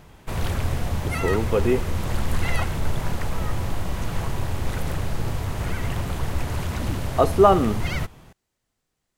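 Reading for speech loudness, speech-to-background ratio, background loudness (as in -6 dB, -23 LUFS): -21.5 LUFS, 6.5 dB, -28.0 LUFS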